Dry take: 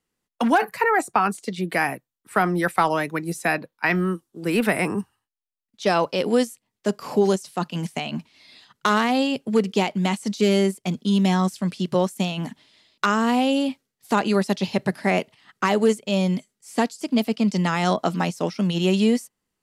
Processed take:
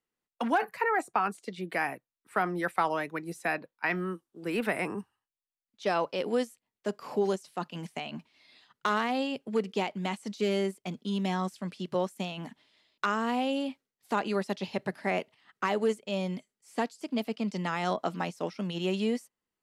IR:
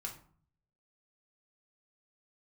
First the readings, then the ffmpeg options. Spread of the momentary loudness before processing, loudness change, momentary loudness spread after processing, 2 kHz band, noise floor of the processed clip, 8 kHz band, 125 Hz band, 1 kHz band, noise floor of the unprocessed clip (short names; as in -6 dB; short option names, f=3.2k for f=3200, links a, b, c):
9 LU, -9.0 dB, 10 LU, -8.0 dB, under -85 dBFS, -13.0 dB, -12.0 dB, -7.5 dB, -84 dBFS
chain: -af "bass=f=250:g=-6,treble=f=4k:g=-6,volume=-7.5dB"